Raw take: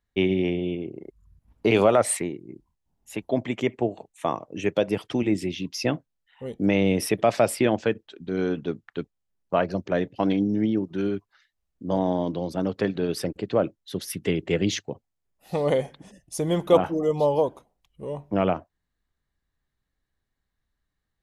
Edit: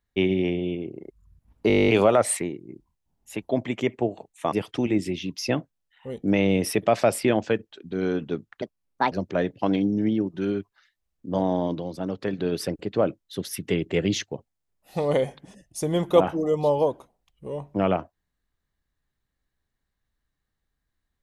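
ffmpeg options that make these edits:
-filter_complex "[0:a]asplit=16[a][b][c][d][e][f][g][h][i][j][k][l][m][n][o][p];[a]atrim=end=1.702[q];[b]atrim=start=1.678:end=1.702[r];[c]atrim=start=1.678:end=1.702[s];[d]atrim=start=1.678:end=1.702[t];[e]atrim=start=1.678:end=1.702[u];[f]atrim=start=1.678:end=1.702[v];[g]atrim=start=1.678:end=1.702[w];[h]atrim=start=1.678:end=1.702[x];[i]atrim=start=1.678:end=1.702[y];[j]atrim=start=1.678:end=1.702[z];[k]atrim=start=1.678:end=4.322[aa];[l]atrim=start=4.878:end=8.984[ab];[m]atrim=start=8.98:end=9.68,asetpts=PTS-STARTPTS,asetrate=62622,aresample=44100,atrim=end_sample=21739,asetpts=PTS-STARTPTS[ac];[n]atrim=start=9.676:end=12.372[ad];[o]atrim=start=12.368:end=12.902,asetpts=PTS-STARTPTS,volume=-3.5dB[ae];[p]atrim=start=12.898[af];[q][r]acrossfade=d=0.004:c1=hsin:c2=hsin[ag];[ag][s]acrossfade=d=0.004:c1=hsin:c2=hsin[ah];[ah][t]acrossfade=d=0.004:c1=hsin:c2=hsin[ai];[ai][u]acrossfade=d=0.004:c1=hsin:c2=hsin[aj];[aj][v]acrossfade=d=0.004:c1=hsin:c2=hsin[ak];[ak][w]acrossfade=d=0.004:c1=hsin:c2=hsin[al];[al][x]acrossfade=d=0.004:c1=hsin:c2=hsin[am];[am][y]acrossfade=d=0.004:c1=hsin:c2=hsin[an];[an][z]acrossfade=d=0.004:c1=hsin:c2=hsin[ao];[ao][aa]acrossfade=d=0.004:c1=hsin:c2=hsin[ap];[ap][ab]acrossfade=d=0.004:c1=hsin:c2=hsin[aq];[aq][ac]acrossfade=d=0.004:c1=hsin:c2=hsin[ar];[ar][ad]acrossfade=d=0.004:c1=hsin:c2=hsin[as];[as][ae]acrossfade=d=0.004:c1=hsin:c2=hsin[at];[at][af]acrossfade=d=0.004:c1=hsin:c2=hsin"

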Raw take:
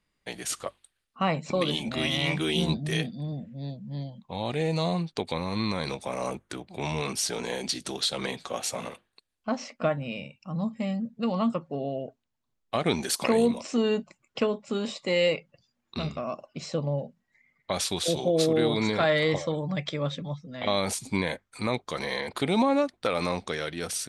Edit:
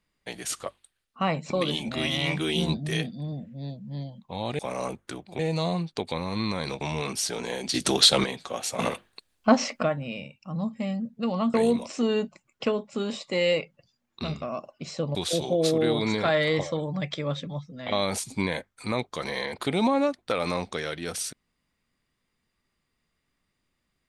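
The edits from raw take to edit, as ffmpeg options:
-filter_complex "[0:a]asplit=10[a][b][c][d][e][f][g][h][i][j];[a]atrim=end=4.592[k];[b]atrim=start=6.008:end=6.812[l];[c]atrim=start=4.588:end=6.012[m];[d]atrim=start=6.808:end=7.742[n];[e]atrim=start=7.738:end=8.242,asetpts=PTS-STARTPTS,volume=10.5dB[o];[f]atrim=start=8.238:end=8.792[p];[g]atrim=start=8.788:end=9.832,asetpts=PTS-STARTPTS,volume=10.5dB[q];[h]atrim=start=9.828:end=11.542[r];[i]atrim=start=13.288:end=16.902[s];[j]atrim=start=17.898[t];[k][l]acrossfade=d=0.004:c1=hsin:c2=hsin[u];[u][m]acrossfade=d=0.004:c1=hsin:c2=hsin[v];[v][n]acrossfade=d=0.004:c1=hsin:c2=hsin[w];[w][o]acrossfade=d=0.004:c1=hsin:c2=hsin[x];[x][p]acrossfade=d=0.004:c1=hsin:c2=hsin[y];[y][q]acrossfade=d=0.004:c1=hsin:c2=hsin[z];[z][r]acrossfade=d=0.004:c1=hsin:c2=hsin[aa];[aa][s]acrossfade=d=0.004:c1=hsin:c2=hsin[ab];[ab][t]acrossfade=d=0.004:c1=hsin:c2=hsin"

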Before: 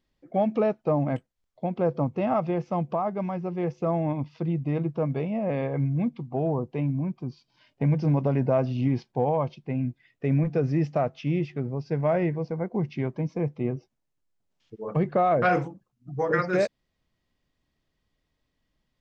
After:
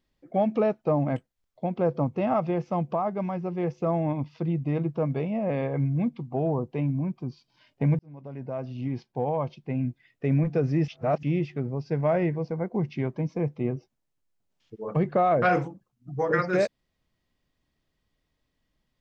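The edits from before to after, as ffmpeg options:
-filter_complex "[0:a]asplit=4[a][b][c][d];[a]atrim=end=7.99,asetpts=PTS-STARTPTS,afade=t=out:st=7.986:d=0.004:c=hsin[e];[b]atrim=start=7.99:end=10.882,asetpts=PTS-STARTPTS,afade=t=in:d=1.83[f];[c]atrim=start=10.878:end=11.232,asetpts=PTS-STARTPTS,areverse[g];[d]atrim=start=11.228[h];[e][f]concat=n=2:v=0:a=1[i];[i][g]acrossfade=d=0.004:c1=hsin:c2=hsin[j];[j][h]acrossfade=d=0.004:c1=hsin:c2=hsin"

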